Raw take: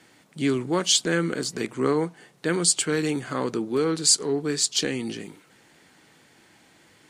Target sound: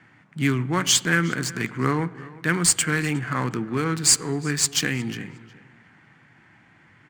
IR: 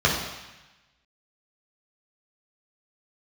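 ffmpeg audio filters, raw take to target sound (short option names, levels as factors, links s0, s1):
-filter_complex "[0:a]tiltshelf=f=740:g=-4,adynamicsmooth=sensitivity=5.5:basefreq=2400,equalizer=f=125:t=o:w=1:g=12,equalizer=f=500:t=o:w=1:g=-8,equalizer=f=2000:t=o:w=1:g=4,equalizer=f=4000:t=o:w=1:g=-9,asplit=2[s0][s1];[s1]adelay=361,lowpass=f=3800:p=1,volume=0.106,asplit=2[s2][s3];[s3]adelay=361,lowpass=f=3800:p=1,volume=0.29[s4];[s0][s2][s4]amix=inputs=3:normalize=0,asplit=2[s5][s6];[1:a]atrim=start_sample=2205,asetrate=29106,aresample=44100[s7];[s6][s7]afir=irnorm=-1:irlink=0,volume=0.0141[s8];[s5][s8]amix=inputs=2:normalize=0,volume=1.41"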